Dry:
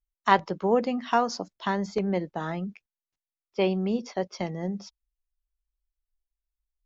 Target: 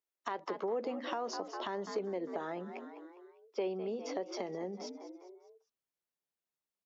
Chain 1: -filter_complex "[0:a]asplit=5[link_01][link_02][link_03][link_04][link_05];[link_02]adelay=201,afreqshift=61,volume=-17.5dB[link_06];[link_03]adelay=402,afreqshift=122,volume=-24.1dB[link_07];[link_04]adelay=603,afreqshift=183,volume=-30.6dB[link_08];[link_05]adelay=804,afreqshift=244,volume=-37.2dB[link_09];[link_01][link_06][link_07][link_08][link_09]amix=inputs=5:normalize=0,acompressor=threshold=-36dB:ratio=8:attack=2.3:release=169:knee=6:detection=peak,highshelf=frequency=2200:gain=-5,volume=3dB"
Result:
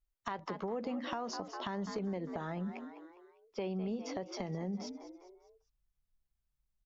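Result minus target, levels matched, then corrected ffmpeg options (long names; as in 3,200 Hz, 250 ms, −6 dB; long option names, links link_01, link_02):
500 Hz band −3.0 dB
-filter_complex "[0:a]asplit=5[link_01][link_02][link_03][link_04][link_05];[link_02]adelay=201,afreqshift=61,volume=-17.5dB[link_06];[link_03]adelay=402,afreqshift=122,volume=-24.1dB[link_07];[link_04]adelay=603,afreqshift=183,volume=-30.6dB[link_08];[link_05]adelay=804,afreqshift=244,volume=-37.2dB[link_09];[link_01][link_06][link_07][link_08][link_09]amix=inputs=5:normalize=0,acompressor=threshold=-36dB:ratio=8:attack=2.3:release=169:knee=6:detection=peak,highpass=frequency=370:width_type=q:width=1.6,highshelf=frequency=2200:gain=-5,volume=3dB"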